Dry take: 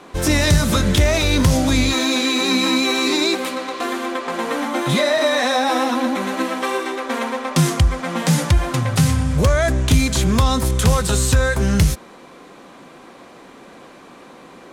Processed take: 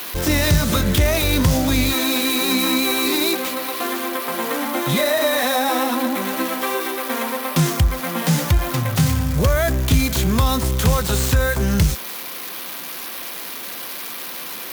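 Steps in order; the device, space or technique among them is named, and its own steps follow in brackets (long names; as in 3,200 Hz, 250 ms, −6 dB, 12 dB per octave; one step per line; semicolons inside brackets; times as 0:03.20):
budget class-D amplifier (gap after every zero crossing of 0.066 ms; spike at every zero crossing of −13.5 dBFS)
level −1.5 dB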